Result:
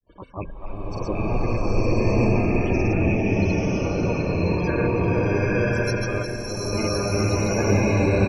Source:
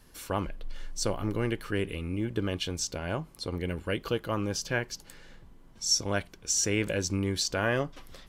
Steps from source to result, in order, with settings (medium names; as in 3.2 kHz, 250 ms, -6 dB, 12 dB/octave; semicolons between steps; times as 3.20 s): rattle on loud lows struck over -34 dBFS, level -17 dBFS; low-pass 1.2 kHz 6 dB/octave; gate with hold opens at -46 dBFS; peaking EQ 850 Hz -2.5 dB 1.5 oct; in parallel at -4.5 dB: saturation -25.5 dBFS, distortion -14 dB; on the sum: harmony voices -5 st -10 dB, +12 st -7 dB; on a send: two-band feedback delay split 570 Hz, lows 486 ms, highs 337 ms, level -8 dB; on the sum: loudest bins only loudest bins 32; granulator, pitch spread up and down by 0 st; swelling reverb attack 1080 ms, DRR -9 dB